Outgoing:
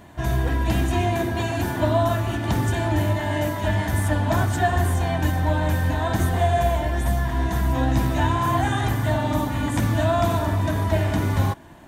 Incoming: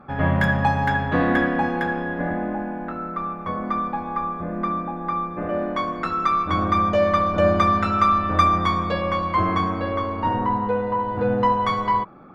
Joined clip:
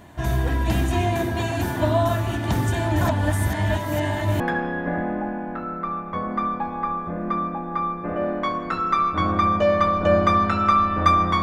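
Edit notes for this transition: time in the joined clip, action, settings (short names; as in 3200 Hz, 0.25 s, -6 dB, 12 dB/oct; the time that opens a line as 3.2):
outgoing
3.01–4.4 reverse
4.4 switch to incoming from 1.73 s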